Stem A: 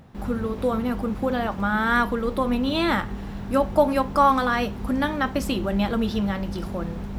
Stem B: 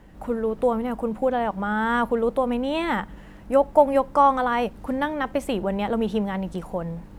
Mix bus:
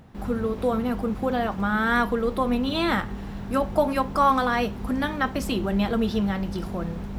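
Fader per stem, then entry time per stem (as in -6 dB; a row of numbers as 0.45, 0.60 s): -1.0, -12.0 dB; 0.00, 0.00 s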